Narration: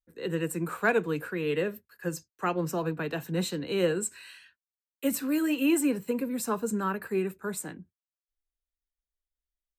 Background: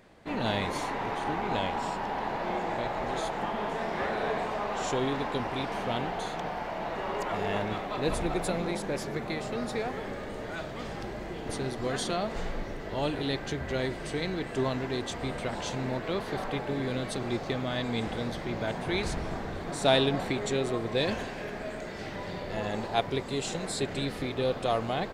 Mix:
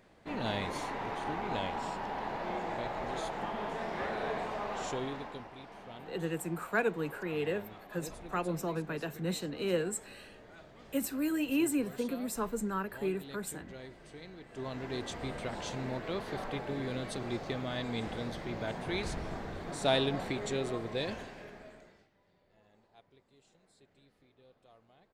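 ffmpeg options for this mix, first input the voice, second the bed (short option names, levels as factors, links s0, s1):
-filter_complex "[0:a]adelay=5900,volume=0.562[s0];[1:a]volume=2.24,afade=t=out:st=4.74:d=0.77:silence=0.251189,afade=t=in:st=14.48:d=0.5:silence=0.251189,afade=t=out:st=20.69:d=1.39:silence=0.0354813[s1];[s0][s1]amix=inputs=2:normalize=0"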